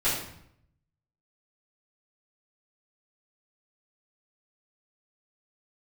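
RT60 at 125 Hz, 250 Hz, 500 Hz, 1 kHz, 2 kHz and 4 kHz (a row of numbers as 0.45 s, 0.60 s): 1.1 s, 0.80 s, 0.70 s, 0.70 s, 0.65 s, 0.55 s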